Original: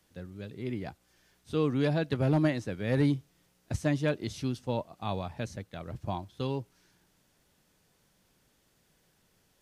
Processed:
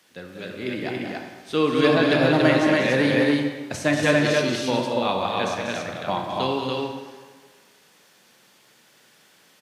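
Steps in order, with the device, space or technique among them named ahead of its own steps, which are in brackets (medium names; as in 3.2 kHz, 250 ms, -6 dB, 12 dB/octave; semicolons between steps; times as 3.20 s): stadium PA (high-pass 230 Hz 12 dB/octave; peaking EQ 2.6 kHz +6.5 dB 2.8 oct; loudspeakers at several distances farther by 65 m -7 dB, 78 m -9 dB, 97 m -2 dB; reverberation RT60 1.5 s, pre-delay 25 ms, DRR 3.5 dB); trim +6.5 dB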